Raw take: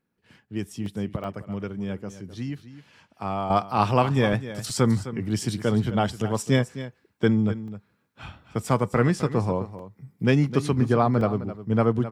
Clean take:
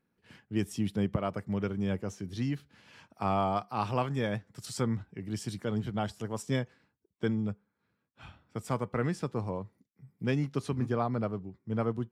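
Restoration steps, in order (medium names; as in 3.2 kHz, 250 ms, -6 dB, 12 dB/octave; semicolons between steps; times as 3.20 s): interpolate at 0.86/1.24/4.33/4.70/7.68/9.79/11.21 s, 2.4 ms; inverse comb 259 ms -13.5 dB; gain correction -9.5 dB, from 3.50 s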